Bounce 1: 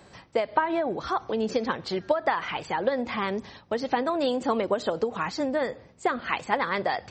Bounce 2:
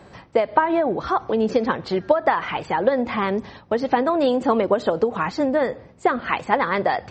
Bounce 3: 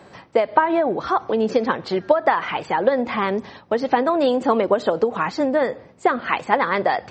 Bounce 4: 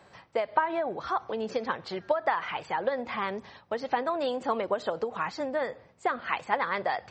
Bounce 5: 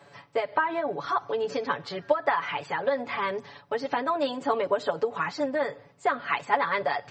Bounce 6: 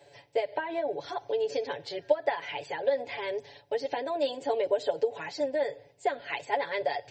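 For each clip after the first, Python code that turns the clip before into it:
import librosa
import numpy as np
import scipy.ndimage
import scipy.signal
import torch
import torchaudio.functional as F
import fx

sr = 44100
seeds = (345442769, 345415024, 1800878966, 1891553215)

y1 = fx.high_shelf(x, sr, hz=3200.0, db=-11.0)
y1 = F.gain(torch.from_numpy(y1), 7.0).numpy()
y2 = fx.highpass(y1, sr, hz=180.0, slope=6)
y2 = F.gain(torch.from_numpy(y2), 1.5).numpy()
y3 = fx.peak_eq(y2, sr, hz=280.0, db=-7.5, octaves=1.7)
y3 = F.gain(torch.from_numpy(y3), -7.5).numpy()
y4 = scipy.signal.sosfilt(scipy.signal.butter(2, 70.0, 'highpass', fs=sr, output='sos'), y3)
y4 = fx.notch(y4, sr, hz=760.0, q=17.0)
y4 = y4 + 1.0 * np.pad(y4, (int(7.0 * sr / 1000.0), 0))[:len(y4)]
y5 = fx.fixed_phaser(y4, sr, hz=500.0, stages=4)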